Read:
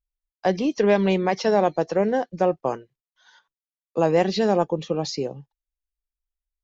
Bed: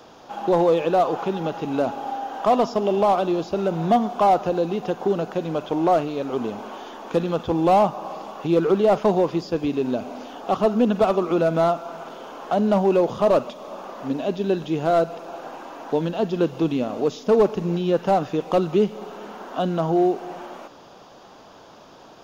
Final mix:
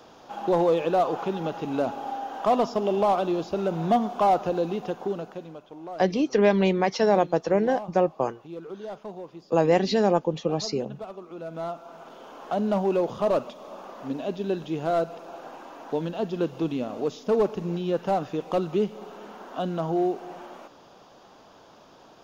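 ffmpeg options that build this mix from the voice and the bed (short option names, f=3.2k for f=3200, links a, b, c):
-filter_complex "[0:a]adelay=5550,volume=-1dB[a];[1:a]volume=10.5dB,afade=t=out:st=4.69:d=0.93:silence=0.158489,afade=t=in:st=11.34:d=1.15:silence=0.199526[b];[a][b]amix=inputs=2:normalize=0"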